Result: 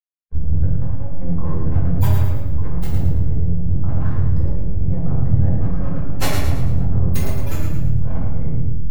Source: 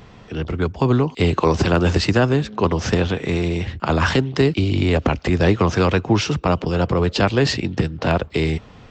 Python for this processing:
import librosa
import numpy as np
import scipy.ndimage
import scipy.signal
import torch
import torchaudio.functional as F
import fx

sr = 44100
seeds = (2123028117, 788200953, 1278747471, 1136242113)

p1 = fx.delta_hold(x, sr, step_db=-23.5)
p2 = fx.spec_gate(p1, sr, threshold_db=-20, keep='strong')
p3 = scipy.signal.sosfilt(scipy.signal.cheby2(4, 50, [110.0, 6700.0], 'bandstop', fs=sr, output='sos'), p2)
p4 = fx.low_shelf(p3, sr, hz=120.0, db=-8.5)
p5 = p4 + 0.46 * np.pad(p4, (int(6.9 * sr / 1000.0), 0))[:len(p4)]
p6 = np.abs(p5)
p7 = fx.tilt_eq(p6, sr, slope=-3.0)
p8 = p7 + fx.echo_feedback(p7, sr, ms=110, feedback_pct=43, wet_db=-6, dry=0)
p9 = fx.room_shoebox(p8, sr, seeds[0], volume_m3=210.0, walls='mixed', distance_m=2.1)
p10 = fx.spectral_comp(p9, sr, ratio=10.0)
y = p10 * librosa.db_to_amplitude(-7.5)